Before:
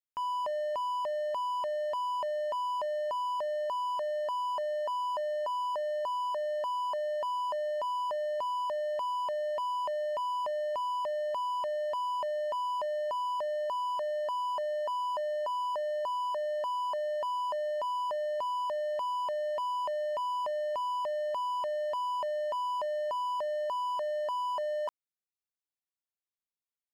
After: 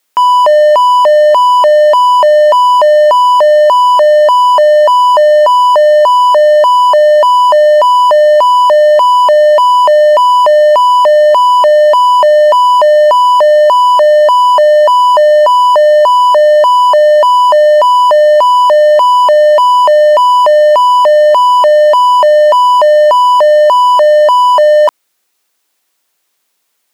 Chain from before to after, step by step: HPF 280 Hz; maximiser +33 dB; gain -1 dB

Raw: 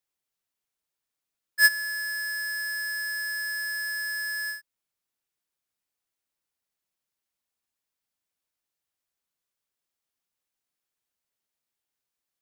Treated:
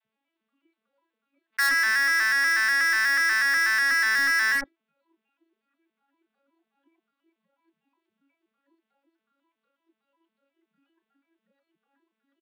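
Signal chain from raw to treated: arpeggiated vocoder major triad, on A3, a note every 0.122 s; steep low-pass 3500 Hz 36 dB/oct; spectral noise reduction 18 dB; 1.88–3.89 HPF 380 Hz 12 dB/oct; sample leveller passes 5; soft clip -21 dBFS, distortion -12 dB; bands offset in time highs, lows 30 ms, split 700 Hz; fast leveller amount 70%

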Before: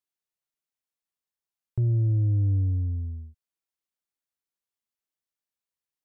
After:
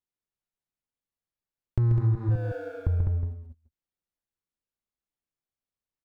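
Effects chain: 2.15–2.87 steep high-pass 400 Hz 96 dB/oct; flipped gate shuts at -35 dBFS, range -24 dB; in parallel at -7.5 dB: fuzz box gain 49 dB, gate -58 dBFS; on the sum: tilt -2.5 dB/oct; on a send: tapped delay 0.136/0.203/0.364 s -5/-3.5/-12 dB; on the sum: compressor 6:1, threshold -16 dBFS, peak gain reduction 7.5 dB; ending taper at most 570 dB/s; gain -4 dB

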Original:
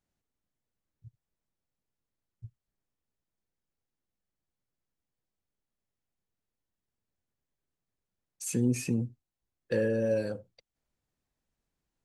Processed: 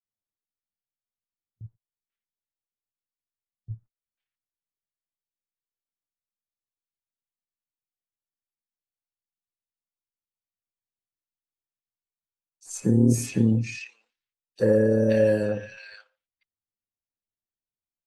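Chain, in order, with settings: granular stretch 1.5×, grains 57 ms; gate -57 dBFS, range -26 dB; low-pass opened by the level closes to 1900 Hz, open at -28 dBFS; three bands offset in time highs, lows, mids 40/530 ms, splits 1600/4800 Hz; gain +9 dB; AAC 48 kbps 44100 Hz

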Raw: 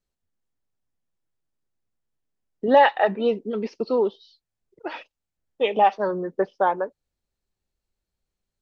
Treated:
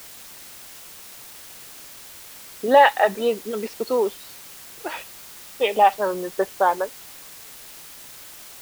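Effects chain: low shelf 270 Hz -12 dB; in parallel at -6 dB: requantised 6-bit, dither triangular

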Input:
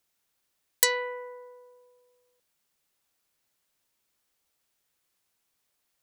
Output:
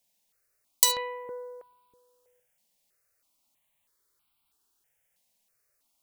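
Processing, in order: 1.25–1.73 low shelf 220 Hz +9.5 dB; non-linear reverb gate 90 ms flat, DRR 6 dB; step phaser 3.1 Hz 360–1800 Hz; gain +2.5 dB

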